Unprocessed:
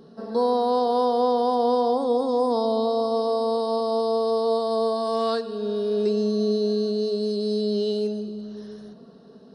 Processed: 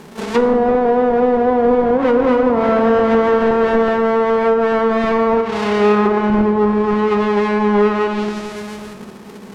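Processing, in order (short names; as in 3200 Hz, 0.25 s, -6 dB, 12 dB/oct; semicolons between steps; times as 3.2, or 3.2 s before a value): half-waves squared off; harmoniser +12 st -11 dB; treble ducked by the level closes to 720 Hz, closed at -14.5 dBFS; reverb RT60 2.1 s, pre-delay 3 ms, DRR 6 dB; gain +6 dB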